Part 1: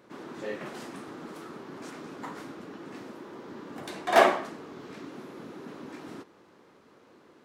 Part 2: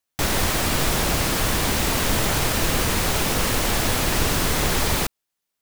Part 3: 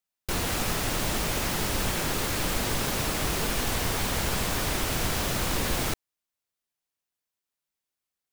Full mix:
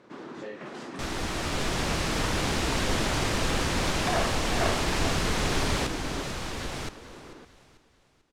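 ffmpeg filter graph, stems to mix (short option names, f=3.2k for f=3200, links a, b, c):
-filter_complex "[0:a]volume=2dB,asplit=2[a][b];[b]volume=-20.5dB[c];[1:a]adelay=800,volume=-13dB,asplit=2[d][e];[e]volume=-10dB[f];[2:a]adelay=950,volume=-11dB,asplit=2[g][h];[h]volume=-18dB[i];[a][g]amix=inputs=2:normalize=0,acompressor=threshold=-36dB:ratio=6,volume=0dB[j];[c][f][i]amix=inputs=3:normalize=0,aecho=0:1:442|884|1326|1768|2210|2652:1|0.4|0.16|0.064|0.0256|0.0102[k];[d][j][k]amix=inputs=3:normalize=0,lowpass=6.9k,dynaudnorm=f=420:g=7:m=7dB"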